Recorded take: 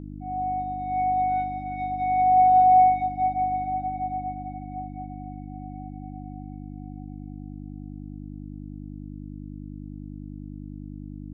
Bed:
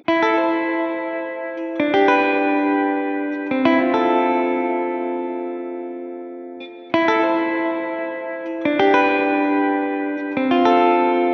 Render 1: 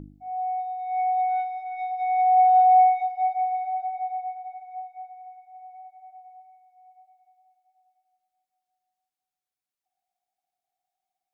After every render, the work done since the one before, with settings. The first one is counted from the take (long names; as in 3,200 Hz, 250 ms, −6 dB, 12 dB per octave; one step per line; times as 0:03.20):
hum removal 50 Hz, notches 11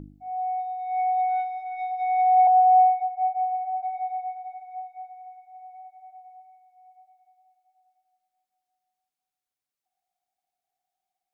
0:02.47–0:03.83: low-pass filter 1,200 Hz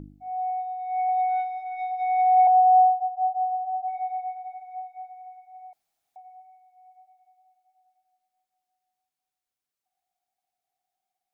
0:00.50–0:01.09: high-frequency loss of the air 190 metres
0:02.55–0:03.88: spectral envelope exaggerated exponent 3
0:05.73–0:06.16: fill with room tone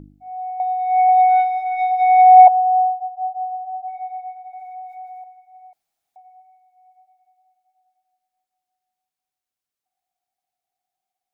0:00.60–0:02.48: clip gain +11 dB
0:04.53–0:05.24: envelope flattener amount 70%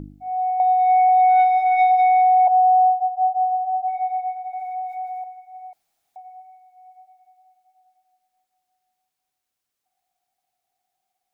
in parallel at 0 dB: downward compressor, threshold −22 dBFS, peak gain reduction 16.5 dB
on the sum: brickwall limiter −11 dBFS, peak gain reduction 11 dB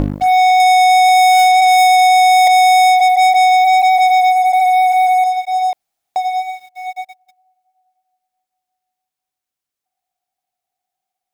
leveller curve on the samples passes 5
in parallel at +1.5 dB: downward compressor, threshold −22 dBFS, peak gain reduction 9 dB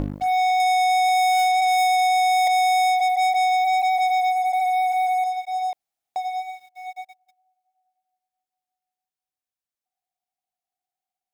level −9.5 dB